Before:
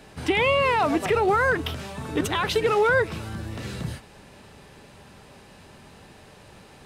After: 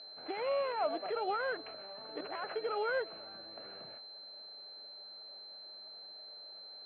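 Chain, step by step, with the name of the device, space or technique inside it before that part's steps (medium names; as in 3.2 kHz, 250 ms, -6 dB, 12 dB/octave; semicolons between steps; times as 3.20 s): toy sound module (decimation joined by straight lines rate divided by 8×; class-D stage that switches slowly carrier 4.1 kHz; cabinet simulation 610–4200 Hz, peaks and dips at 630 Hz +7 dB, 1 kHz -8 dB, 1.9 kHz -5 dB, 3.8 kHz -6 dB); trim -8.5 dB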